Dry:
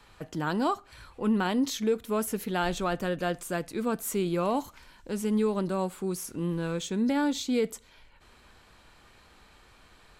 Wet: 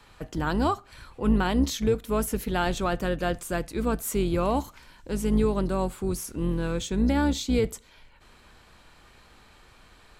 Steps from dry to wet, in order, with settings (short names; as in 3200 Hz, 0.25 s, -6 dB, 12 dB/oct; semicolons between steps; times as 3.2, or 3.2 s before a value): octaver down 2 oct, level -2 dB; gain +2 dB